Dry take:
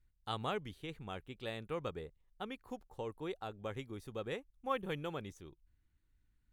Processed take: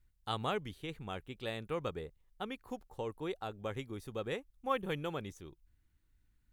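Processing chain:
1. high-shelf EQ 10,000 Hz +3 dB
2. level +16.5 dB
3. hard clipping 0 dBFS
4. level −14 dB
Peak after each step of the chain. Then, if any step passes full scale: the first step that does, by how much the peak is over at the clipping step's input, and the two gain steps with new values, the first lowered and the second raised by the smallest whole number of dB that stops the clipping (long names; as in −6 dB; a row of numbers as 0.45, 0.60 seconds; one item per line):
−21.5, −5.0, −5.0, −19.0 dBFS
no step passes full scale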